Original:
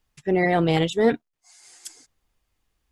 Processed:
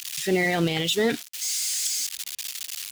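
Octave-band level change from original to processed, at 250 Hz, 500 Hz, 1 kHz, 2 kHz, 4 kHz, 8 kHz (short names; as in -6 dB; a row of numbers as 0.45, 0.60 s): -3.5, -4.0, -6.5, +2.0, +8.5, +18.0 dB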